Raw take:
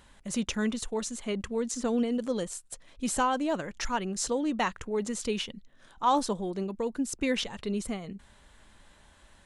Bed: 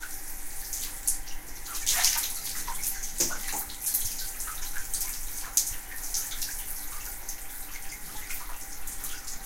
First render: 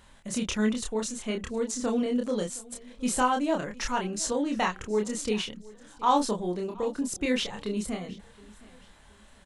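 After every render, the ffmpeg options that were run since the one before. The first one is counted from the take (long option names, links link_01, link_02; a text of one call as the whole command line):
ffmpeg -i in.wav -filter_complex "[0:a]asplit=2[link_01][link_02];[link_02]adelay=28,volume=-3dB[link_03];[link_01][link_03]amix=inputs=2:normalize=0,aecho=1:1:718|1436:0.0794|0.0262" out.wav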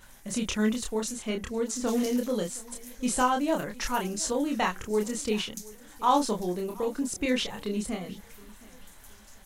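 ffmpeg -i in.wav -i bed.wav -filter_complex "[1:a]volume=-17.5dB[link_01];[0:a][link_01]amix=inputs=2:normalize=0" out.wav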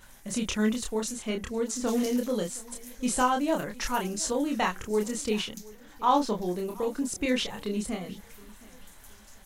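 ffmpeg -i in.wav -filter_complex "[0:a]asettb=1/sr,asplit=3[link_01][link_02][link_03];[link_01]atrim=end=5.574[link_04];[link_02]atrim=start=5.57:end=6.46,asetpts=PTS-STARTPTS,afade=type=in:duration=0.004:curve=qsin,afade=type=out:start_time=0.886:duration=0.004:curve=qsin,equalizer=frequency=9300:width_type=o:width=0.96:gain=-11[link_05];[link_03]atrim=start=6.456[link_06];[link_04][link_05]acrossfade=duration=0.004:curve1=hsin:curve2=qsin[link_07];[link_07][link_06]acrossfade=duration=0.004:curve1=qsin:curve2=hsin" out.wav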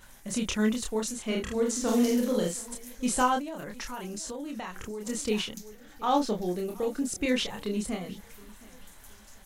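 ffmpeg -i in.wav -filter_complex "[0:a]asettb=1/sr,asplit=3[link_01][link_02][link_03];[link_01]atrim=end=1.254[link_04];[link_02]atrim=start=1.25:end=2.75,asetpts=PTS-STARTPTS,afade=type=in:duration=0.004:curve=qsin,afade=type=out:start_time=1.496:duration=0.004:curve=qsin,asplit=2[link_05][link_06];[link_06]adelay=46,volume=-2.5dB[link_07];[link_05][link_07]amix=inputs=2:normalize=0,atrim=end_sample=66150[link_08];[link_03]atrim=start=2.746[link_09];[link_04][link_08]acrossfade=duration=0.004:curve1=hsin:curve2=qsin[link_10];[link_10][link_09]acrossfade=duration=0.004:curve1=qsin:curve2=hsin,asettb=1/sr,asplit=3[link_11][link_12][link_13];[link_11]atrim=end=3.394[link_14];[link_12]atrim=start=3.39:end=5.07,asetpts=PTS-STARTPTS,afade=type=in:duration=0.004:curve=qsin,afade=type=out:start_time=1.676:duration=0.004:curve=qsin,acompressor=threshold=-33dB:ratio=12:attack=3.2:release=140:knee=1:detection=peak[link_15];[link_13]atrim=start=5.066[link_16];[link_14][link_15]acrossfade=duration=0.004:curve1=hsin:curve2=qsin[link_17];[link_17][link_16]acrossfade=duration=0.004:curve1=qsin:curve2=hsin,asettb=1/sr,asplit=3[link_18][link_19][link_20];[link_18]atrim=end=5.654[link_21];[link_19]atrim=start=5.65:end=7.25,asetpts=PTS-STARTPTS,afade=type=in:duration=0.004:curve=qsin,afade=type=out:start_time=1.596:duration=0.004:curve=qsin,bandreject=frequency=1000:width=5.5[link_22];[link_20]atrim=start=7.246[link_23];[link_21][link_22]acrossfade=duration=0.004:curve1=hsin:curve2=qsin[link_24];[link_24][link_23]acrossfade=duration=0.004:curve1=qsin:curve2=hsin" out.wav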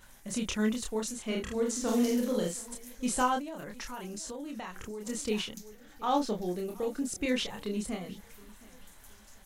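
ffmpeg -i in.wav -af "volume=-3dB" out.wav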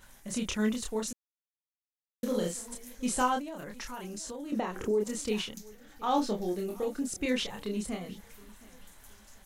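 ffmpeg -i in.wav -filter_complex "[0:a]asettb=1/sr,asplit=3[link_01][link_02][link_03];[link_01]atrim=end=4.524[link_04];[link_02]atrim=start=4.52:end=5.04,asetpts=PTS-STARTPTS,afade=type=in:duration=0.004:curve=qsin,afade=type=out:start_time=0.516:duration=0.004:curve=qsin,equalizer=frequency=380:width=0.6:gain=14.5[link_05];[link_03]atrim=start=5.036[link_06];[link_04][link_05]acrossfade=duration=0.004:curve1=hsin:curve2=qsin[link_07];[link_07][link_06]acrossfade=duration=0.004:curve1=qsin:curve2=hsin,asettb=1/sr,asplit=3[link_08][link_09][link_10];[link_08]atrim=end=6.164[link_11];[link_09]atrim=start=6.16:end=6.84,asetpts=PTS-STARTPTS,afade=type=in:duration=0.004:curve=qsin,afade=type=out:start_time=0.676:duration=0.004:curve=qsin,asplit=2[link_12][link_13];[link_13]adelay=20,volume=-6.5dB[link_14];[link_12][link_14]amix=inputs=2:normalize=0,atrim=end_sample=29988[link_15];[link_10]atrim=start=6.836[link_16];[link_11][link_15]acrossfade=duration=0.004:curve1=hsin:curve2=qsin[link_17];[link_17][link_16]acrossfade=duration=0.004:curve1=qsin:curve2=hsin,asplit=3[link_18][link_19][link_20];[link_18]atrim=end=1.13,asetpts=PTS-STARTPTS,afade=type=out:start_time=1.126:duration=0.004:curve=hsin[link_21];[link_19]atrim=start=1.13:end=2.23,asetpts=PTS-STARTPTS,volume=0[link_22];[link_20]atrim=start=2.23,asetpts=PTS-STARTPTS,afade=type=in:duration=0.004:curve=hsin[link_23];[link_21][link_22][link_23]concat=n=3:v=0:a=1" out.wav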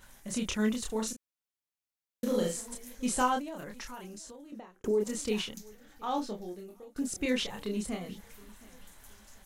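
ffmpeg -i in.wav -filter_complex "[0:a]asettb=1/sr,asplit=3[link_01][link_02][link_03];[link_01]atrim=end=0.864[link_04];[link_02]atrim=start=0.86:end=2.61,asetpts=PTS-STARTPTS,afade=type=in:duration=0.004:curve=qsin,afade=type=out:start_time=1.746:duration=0.004:curve=qsin,asplit=2[link_05][link_06];[link_06]adelay=36,volume=-7dB[link_07];[link_05][link_07]amix=inputs=2:normalize=0,atrim=end_sample=77175[link_08];[link_03]atrim=start=2.606[link_09];[link_04][link_08]acrossfade=duration=0.004:curve1=hsin:curve2=qsin[link_10];[link_10][link_09]acrossfade=duration=0.004:curve1=qsin:curve2=hsin,asplit=3[link_11][link_12][link_13];[link_11]atrim=end=4.84,asetpts=PTS-STARTPTS,afade=type=out:start_time=3.58:duration=1.26[link_14];[link_12]atrim=start=4.84:end=6.96,asetpts=PTS-STARTPTS,afade=type=in:duration=0.004:curve=hsin,afade=type=out:start_time=0.63:duration=1.49:silence=0.0668344[link_15];[link_13]atrim=start=6.96,asetpts=PTS-STARTPTS,afade=type=in:duration=0.004:curve=hsin:silence=0.0668344[link_16];[link_14][link_15][link_16]concat=n=3:v=0:a=1" out.wav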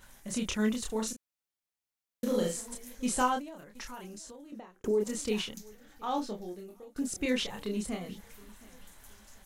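ffmpeg -i in.wav -filter_complex "[0:a]asplit=2[link_01][link_02];[link_01]atrim=end=3.75,asetpts=PTS-STARTPTS,afade=type=out:start_time=3.26:duration=0.49:silence=0.211349[link_03];[link_02]atrim=start=3.75,asetpts=PTS-STARTPTS,afade=type=in:duration=0.004:curve=hsin:silence=0.211349[link_04];[link_03][link_04]concat=n=2:v=0:a=1" out.wav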